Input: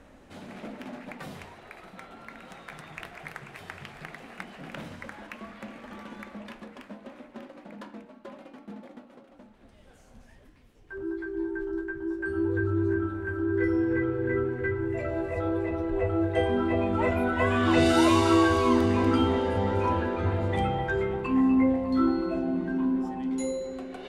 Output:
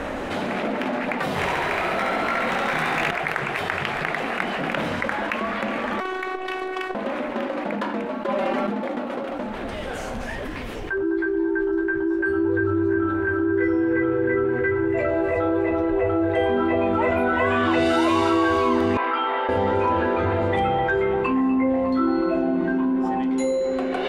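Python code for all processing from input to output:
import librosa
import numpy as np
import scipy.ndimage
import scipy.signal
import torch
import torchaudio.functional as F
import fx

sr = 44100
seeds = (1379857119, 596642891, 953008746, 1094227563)

y = fx.chain(x, sr, fx.room_flutter(wall_m=11.8, rt60_s=1.4),
    fx.leveller(passes=3),
    fx.detune_double(cents=40), at=(1.36, 3.11))
y = fx.chain(y, sr, fx.highpass(hz=79.0, slope=12),
    fx.robotise(hz=375.0),
    fx.transformer_sat(knee_hz=550.0), at=(6.0, 6.95))
y = fx.chain(y, sr, fx.comb(ms=5.1, depth=0.81),
    fx.env_flatten(amount_pct=100), at=(8.28, 8.7))
y = fx.chain(y, sr, fx.highpass(hz=1000.0, slope=12),
    fx.air_absorb(metres=410.0), at=(18.97, 19.49))
y = fx.bass_treble(y, sr, bass_db=-9, treble_db=-9)
y = fx.env_flatten(y, sr, amount_pct=70)
y = y * librosa.db_to_amplitude(2.0)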